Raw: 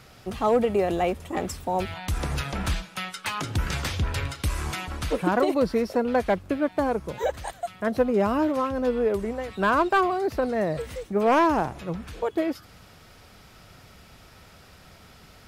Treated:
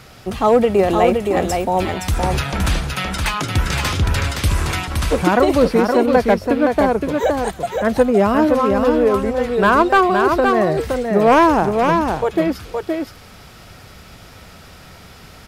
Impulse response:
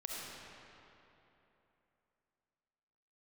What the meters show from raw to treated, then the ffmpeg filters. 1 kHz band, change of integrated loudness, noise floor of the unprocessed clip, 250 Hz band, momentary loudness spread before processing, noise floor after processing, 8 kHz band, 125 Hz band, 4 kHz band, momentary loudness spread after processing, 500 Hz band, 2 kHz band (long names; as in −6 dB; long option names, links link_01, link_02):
+9.5 dB, +9.0 dB, −51 dBFS, +9.0 dB, 9 LU, −42 dBFS, +9.5 dB, +9.5 dB, +9.5 dB, 8 LU, +9.5 dB, +9.5 dB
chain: -af "aecho=1:1:518:0.596,volume=8dB"